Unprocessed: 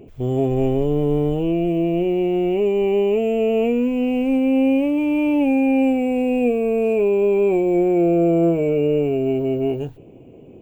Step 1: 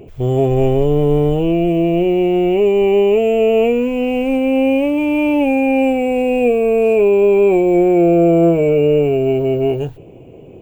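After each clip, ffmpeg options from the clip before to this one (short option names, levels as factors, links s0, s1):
-af "equalizer=f=250:t=o:w=0.69:g=-6.5,volume=2.24"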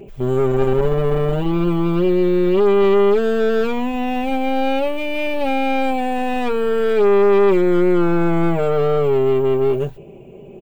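-af "aeval=exprs='(tanh(5.62*val(0)+0.5)-tanh(0.5))/5.62':c=same,aecho=1:1:5.1:0.67"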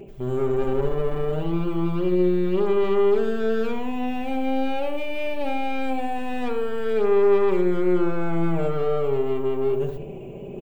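-filter_complex "[0:a]areverse,acompressor=mode=upward:threshold=0.126:ratio=2.5,areverse,asplit=2[s0][s1];[s1]adelay=72,lowpass=f=1200:p=1,volume=0.531,asplit=2[s2][s3];[s3]adelay=72,lowpass=f=1200:p=1,volume=0.52,asplit=2[s4][s5];[s5]adelay=72,lowpass=f=1200:p=1,volume=0.52,asplit=2[s6][s7];[s7]adelay=72,lowpass=f=1200:p=1,volume=0.52,asplit=2[s8][s9];[s9]adelay=72,lowpass=f=1200:p=1,volume=0.52,asplit=2[s10][s11];[s11]adelay=72,lowpass=f=1200:p=1,volume=0.52,asplit=2[s12][s13];[s13]adelay=72,lowpass=f=1200:p=1,volume=0.52[s14];[s0][s2][s4][s6][s8][s10][s12][s14]amix=inputs=8:normalize=0,volume=0.398"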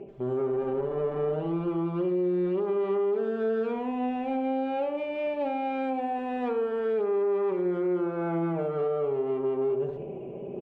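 -af "bandpass=f=530:t=q:w=0.51:csg=0,alimiter=limit=0.0891:level=0:latency=1:release=197"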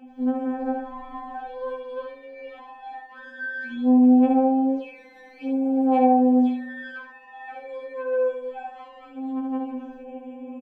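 -filter_complex "[0:a]asplit=2[s0][s1];[s1]aecho=0:1:20|67:0.376|0.531[s2];[s0][s2]amix=inputs=2:normalize=0,afftfilt=real='re*3.46*eq(mod(b,12),0)':imag='im*3.46*eq(mod(b,12),0)':win_size=2048:overlap=0.75,volume=1.78"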